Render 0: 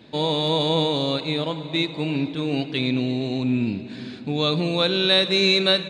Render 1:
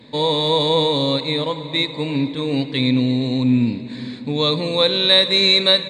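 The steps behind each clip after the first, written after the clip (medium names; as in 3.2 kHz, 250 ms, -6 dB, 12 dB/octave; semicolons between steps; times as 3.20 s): rippled EQ curve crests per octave 1, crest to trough 9 dB; trim +2 dB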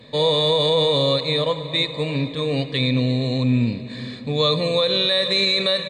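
comb 1.7 ms, depth 52%; peak limiter -10 dBFS, peak gain reduction 8.5 dB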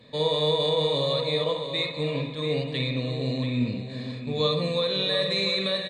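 delay 685 ms -9 dB; on a send at -4 dB: reverberation, pre-delay 46 ms; on the sum: trim -7.5 dB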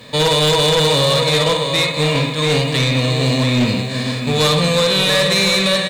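formants flattened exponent 0.6; in parallel at -7.5 dB: sine folder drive 11 dB, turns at -11 dBFS; on the sum: trim +3 dB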